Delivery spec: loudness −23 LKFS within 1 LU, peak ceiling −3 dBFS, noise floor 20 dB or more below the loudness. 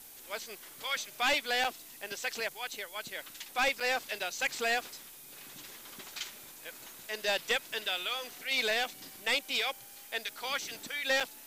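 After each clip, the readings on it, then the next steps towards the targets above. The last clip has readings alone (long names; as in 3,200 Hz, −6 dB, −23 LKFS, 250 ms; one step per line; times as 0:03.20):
number of dropouts 3; longest dropout 5.4 ms; background noise floor −51 dBFS; target noise floor −53 dBFS; integrated loudness −33.0 LKFS; sample peak −21.5 dBFS; target loudness −23.0 LKFS
→ repair the gap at 0:01.64/0:03.80/0:11.20, 5.4 ms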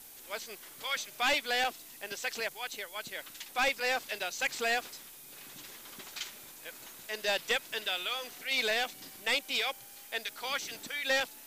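number of dropouts 0; background noise floor −51 dBFS; target noise floor −53 dBFS
→ noise reduction from a noise print 6 dB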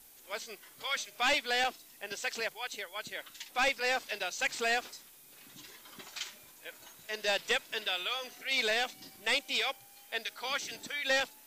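background noise floor −57 dBFS; integrated loudness −33.0 LKFS; sample peak −22.0 dBFS; target loudness −23.0 LKFS
→ level +10 dB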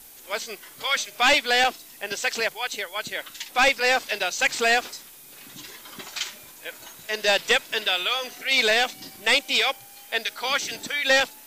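integrated loudness −23.0 LKFS; sample peak −12.0 dBFS; background noise floor −47 dBFS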